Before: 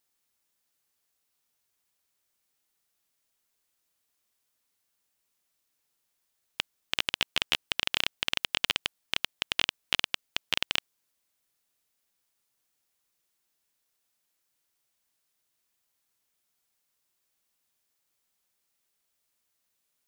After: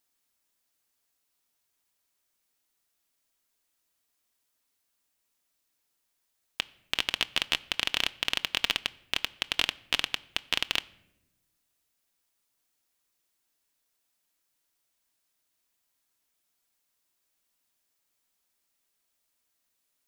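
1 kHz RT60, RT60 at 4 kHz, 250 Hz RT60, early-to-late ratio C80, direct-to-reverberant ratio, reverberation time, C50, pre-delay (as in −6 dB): 0.70 s, 0.55 s, 1.5 s, 24.0 dB, 11.0 dB, 0.85 s, 22.0 dB, 3 ms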